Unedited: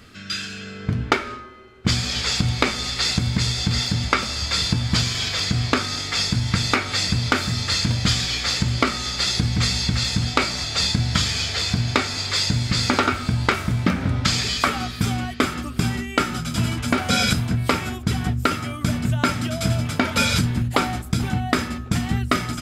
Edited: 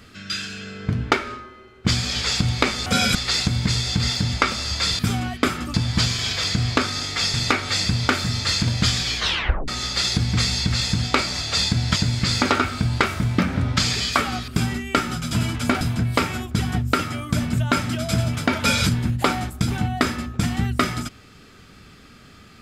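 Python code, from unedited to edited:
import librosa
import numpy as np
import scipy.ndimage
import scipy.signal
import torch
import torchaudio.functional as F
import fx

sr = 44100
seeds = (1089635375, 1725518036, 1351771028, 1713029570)

y = fx.edit(x, sr, fx.cut(start_s=6.3, length_s=0.27),
    fx.tape_stop(start_s=8.4, length_s=0.51),
    fx.cut(start_s=11.19, length_s=1.25),
    fx.move(start_s=14.96, length_s=0.75, to_s=4.7),
    fx.move(start_s=17.04, length_s=0.29, to_s=2.86), tone=tone)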